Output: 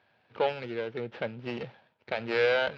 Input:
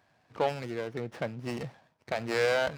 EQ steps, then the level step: cabinet simulation 100–3700 Hz, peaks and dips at 150 Hz -8 dB, 290 Hz -8 dB, 690 Hz -7 dB, 1.1 kHz -8 dB, 1.9 kHz -5 dB; bass shelf 290 Hz -5 dB; +5.0 dB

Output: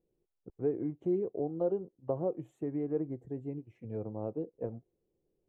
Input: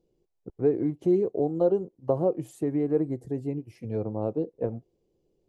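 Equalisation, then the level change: boxcar filter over 9 samples; -8.0 dB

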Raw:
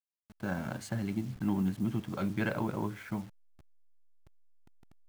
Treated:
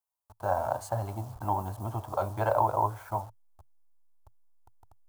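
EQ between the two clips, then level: peaking EQ 73 Hz +6.5 dB 2.4 oct; dynamic bell 640 Hz, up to +8 dB, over -54 dBFS, Q 2.4; FFT filter 110 Hz 0 dB, 160 Hz -22 dB, 930 Hz +15 dB, 2 kHz -11 dB, 11 kHz +6 dB; 0.0 dB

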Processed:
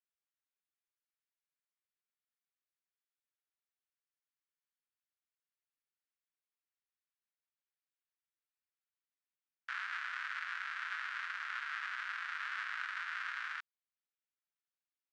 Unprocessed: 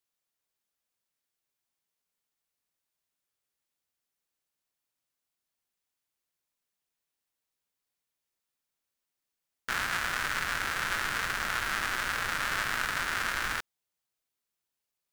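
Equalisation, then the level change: high-pass 1.3 kHz 24 dB/octave; tape spacing loss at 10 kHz 33 dB; -2.0 dB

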